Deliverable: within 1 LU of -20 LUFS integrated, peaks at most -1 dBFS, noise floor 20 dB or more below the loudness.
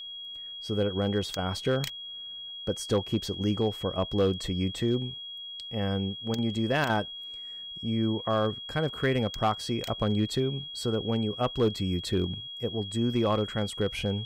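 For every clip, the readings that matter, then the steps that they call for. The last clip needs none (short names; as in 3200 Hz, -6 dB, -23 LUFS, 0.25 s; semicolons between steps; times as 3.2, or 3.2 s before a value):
clipped 0.3%; flat tops at -17.5 dBFS; steady tone 3300 Hz; tone level -38 dBFS; loudness -29.5 LUFS; peak -17.5 dBFS; loudness target -20.0 LUFS
-> clip repair -17.5 dBFS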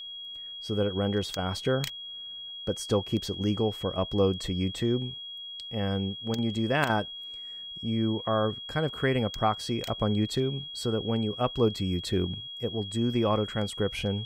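clipped 0.0%; steady tone 3300 Hz; tone level -38 dBFS
-> notch 3300 Hz, Q 30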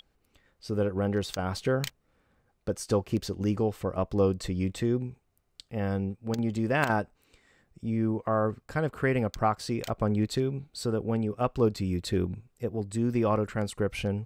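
steady tone none; loudness -29.5 LUFS; peak -9.0 dBFS; loudness target -20.0 LUFS
-> gain +9.5 dB; limiter -1 dBFS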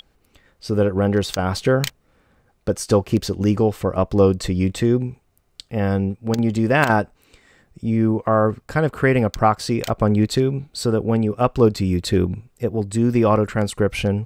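loudness -20.0 LUFS; peak -1.0 dBFS; noise floor -62 dBFS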